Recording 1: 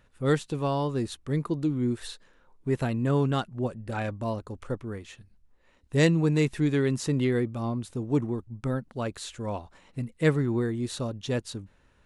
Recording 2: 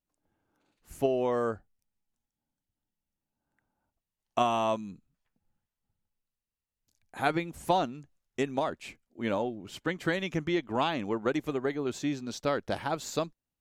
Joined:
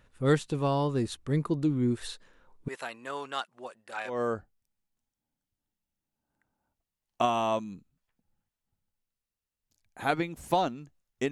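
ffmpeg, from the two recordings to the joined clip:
-filter_complex "[0:a]asettb=1/sr,asplit=3[a][b][c];[a]atrim=end=2.684[d];[b]atrim=start=2.68:end=4.22,asetpts=PTS-STARTPTS,afade=t=in:d=0.004:c=qsin,afade=t=out:st=1.536:d=0.004:c=qsin,highpass=870[e];[c]atrim=start=4.216[f];[d][e]acrossfade=d=0.004:c1=hsin:c2=qsin[g];[g][f]acrossfade=d=0.004:c1=qsin:c2=hsin,apad=whole_dur=11.31,atrim=end=11.31,atrim=end=4.22,asetpts=PTS-STARTPTS[h];[1:a]atrim=start=1.21:end=8.48,asetpts=PTS-STARTPTS[i];[h][i]acrossfade=d=0.18:c1=tri:c2=tri"

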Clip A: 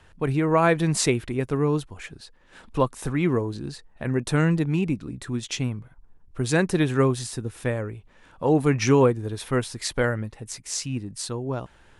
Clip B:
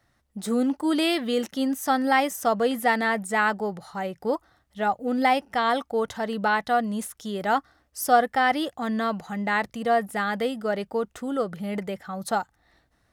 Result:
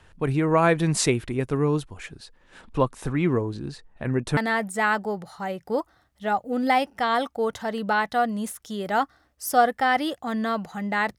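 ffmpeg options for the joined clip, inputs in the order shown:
-filter_complex "[0:a]asettb=1/sr,asplit=3[a][b][c];[a]atrim=end=2.614[d];[b]atrim=start=2.61:end=4.37,asetpts=PTS-STARTPTS,afade=t=in:d=0.004:c=qsin,afade=t=out:st=1.756:d=0.004:c=qsin,highshelf=f=5.8k:g=-7[e];[c]atrim=start=4.366[f];[d][e]acrossfade=d=0.004:c1=hsin:c2=qsin[g];[g][f]acrossfade=d=0.004:c1=qsin:c2=hsin,apad=whole_dur=11.18,atrim=end=11.18,atrim=end=4.372[h];[1:a]atrim=start=2.918:end=9.73[i];[h][i]acrossfade=d=0.004:c1=hsin:c2=hsin"

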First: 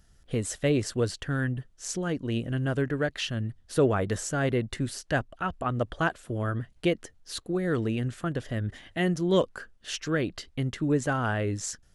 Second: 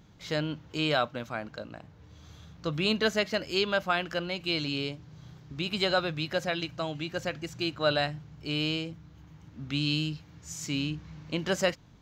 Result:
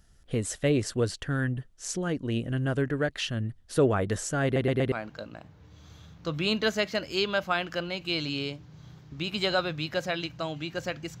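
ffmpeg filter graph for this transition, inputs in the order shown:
-filter_complex "[0:a]apad=whole_dur=11.2,atrim=end=11.2,asplit=4[a][b][c][d];[a]atrim=end=4.562[e];[b]atrim=start=4.438:end=4.562[f];[c]atrim=start=4.438:end=4.562[g];[d]atrim=start=4.438:end=4.562[h];[1:a]atrim=start=1.308:end=7.59[i];[e][f]acrossfade=d=0.004:c1=hsin:c2=hsin[j];[j][g]acrossfade=d=0.004:c1=hsin:c2=hsin[k];[k][h]acrossfade=d=0.004:c1=hsin:c2=hsin[l];[l][i]acrossfade=d=0.004:c1=hsin:c2=hsin"

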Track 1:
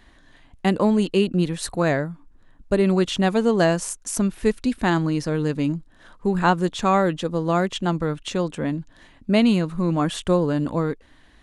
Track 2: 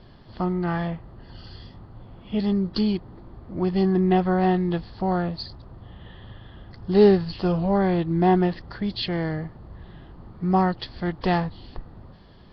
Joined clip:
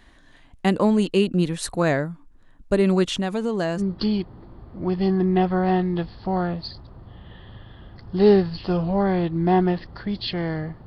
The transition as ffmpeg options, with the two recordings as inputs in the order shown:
-filter_complex "[0:a]asettb=1/sr,asplit=3[a][b][c];[a]atrim=end=3.164[d];[b]atrim=start=3.16:end=3.82,asetpts=PTS-STARTPTS,afade=t=in:d=0.004:c=qsin,afade=t=out:st=0.656:d=0.004:c=qsin,acompressor=threshold=-22dB:ratio=2.5:attack=3.2:release=140:knee=1:detection=peak[e];[c]atrim=start=3.816[f];[d][e]acrossfade=d=0.004:c1=hsin:c2=qsin[g];[g][f]acrossfade=d=0.004:c1=qsin:c2=hsin,apad=whole_dur=10.86,atrim=end=10.86,atrim=end=3.82,asetpts=PTS-STARTPTS[h];[1:a]atrim=start=2.51:end=9.61,asetpts=PTS-STARTPTS[i];[h][i]acrossfade=d=0.06:c1=tri:c2=tri"

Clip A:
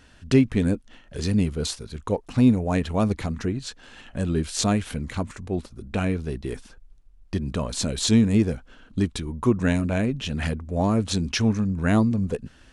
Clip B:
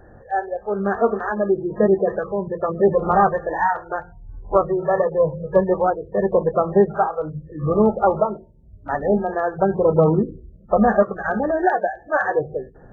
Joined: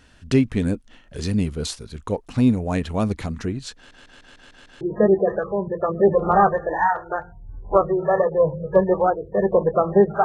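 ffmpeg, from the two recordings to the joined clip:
-filter_complex "[0:a]apad=whole_dur=10.24,atrim=end=10.24,asplit=7[a][b][c][d][e][f][g];[a]atrim=end=3.912[h];[b]atrim=start=3.758:end=3.912[i];[c]atrim=start=3.758:end=3.912[j];[d]atrim=start=3.758:end=3.912[k];[e]atrim=start=3.758:end=3.912[l];[f]atrim=start=3.758:end=3.912[m];[g]atrim=start=3.758:end=3.912[n];[1:a]atrim=start=1.608:end=7.04[o];[h][i]acrossfade=d=0.004:c1=hsin:c2=hsin[p];[p][j]acrossfade=d=0.004:c1=hsin:c2=hsin[q];[q][k]acrossfade=d=0.004:c1=hsin:c2=hsin[r];[r][l]acrossfade=d=0.004:c1=hsin:c2=hsin[s];[s][m]acrossfade=d=0.004:c1=hsin:c2=hsin[t];[t][n]acrossfade=d=0.004:c1=hsin:c2=hsin[u];[u][o]acrossfade=d=0.004:c1=hsin:c2=hsin"

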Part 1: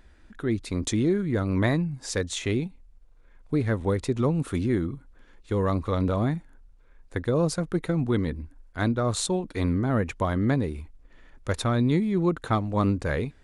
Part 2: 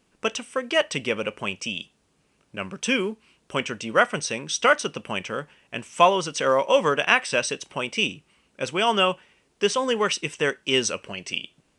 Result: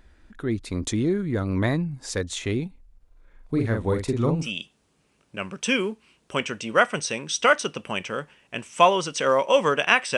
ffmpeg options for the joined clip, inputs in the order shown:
-filter_complex "[0:a]asettb=1/sr,asplit=3[a][b][c];[a]atrim=end=2.964[d];[b]atrim=start=2.96:end=4.52,asetpts=PTS-STARTPTS,afade=t=in:d=0.004:c=qsin,afade=t=out:st=1.556:d=0.004:c=qsin,asplit=2[e][f];[f]adelay=43,volume=-4.5dB[g];[e][g]amix=inputs=2:normalize=0,atrim=end_sample=68796[h];[c]atrim=start=4.516[i];[d][h]acrossfade=d=0.004:c1=hsin:c2=qsin[j];[j][i]acrossfade=d=0.004:c1=qsin:c2=hsin,apad=whole_dur=10.17,atrim=end=10.17,atrim=end=4.52,asetpts=PTS-STARTPTS[k];[1:a]atrim=start=1.54:end=7.37,asetpts=PTS-STARTPTS[l];[k][l]acrossfade=d=0.18:c1=tri:c2=tri"

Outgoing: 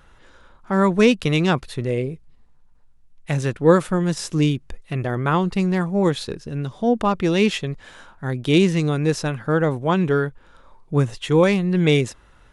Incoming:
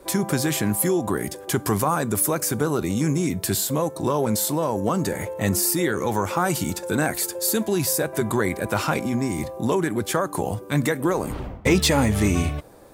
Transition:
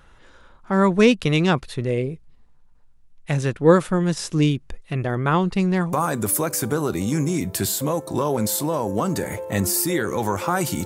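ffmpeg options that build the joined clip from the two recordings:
-filter_complex "[0:a]apad=whole_dur=10.85,atrim=end=10.85,atrim=end=5.932[a];[1:a]atrim=start=1.818:end=6.74[b];[a][b]acrossfade=d=0.004:c1=hsin:c2=hsin"

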